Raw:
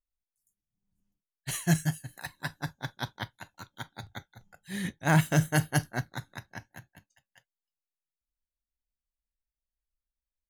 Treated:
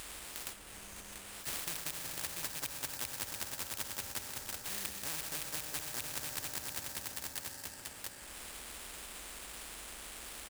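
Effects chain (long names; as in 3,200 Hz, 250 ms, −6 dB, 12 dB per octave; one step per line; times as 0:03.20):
loose part that buzzes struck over −29 dBFS, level −19 dBFS
notch comb filter 710 Hz
single-tap delay 687 ms −18.5 dB
upward compression, threshold −41 dBFS
low shelf with overshoot 100 Hz +12 dB, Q 1.5
on a send at −10.5 dB: convolution reverb RT60 2.7 s, pre-delay 3 ms
on the sum: sample-rate reduction 6,400 Hz, jitter 20%
octave-band graphic EQ 125/250/500/1,000/2,000/4,000/8,000 Hz −7/−4/−4/−6/−4/−6/+7 dB
downward compressor 6 to 1, threshold −42 dBFS, peak gain reduction 16 dB
every bin compressed towards the loudest bin 4 to 1
level +10.5 dB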